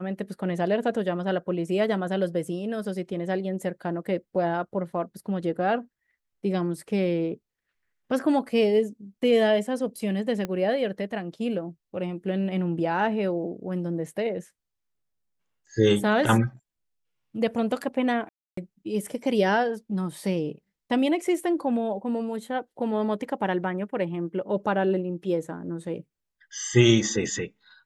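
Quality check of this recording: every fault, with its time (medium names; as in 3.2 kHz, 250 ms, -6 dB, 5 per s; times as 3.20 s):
10.45 s: pop -16 dBFS
18.29–18.57 s: dropout 284 ms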